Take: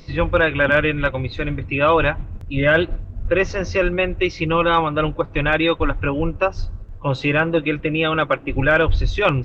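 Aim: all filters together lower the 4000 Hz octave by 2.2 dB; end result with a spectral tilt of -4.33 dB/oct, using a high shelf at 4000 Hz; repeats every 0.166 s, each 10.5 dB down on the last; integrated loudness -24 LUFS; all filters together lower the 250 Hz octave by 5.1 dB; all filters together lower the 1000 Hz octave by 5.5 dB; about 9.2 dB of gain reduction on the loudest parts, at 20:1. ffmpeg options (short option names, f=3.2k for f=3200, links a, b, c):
-af "equalizer=f=250:t=o:g=-7.5,equalizer=f=1k:t=o:g=-7,highshelf=f=4k:g=4,equalizer=f=4k:t=o:g=-4.5,acompressor=threshold=-21dB:ratio=20,aecho=1:1:166|332|498:0.299|0.0896|0.0269,volume=3dB"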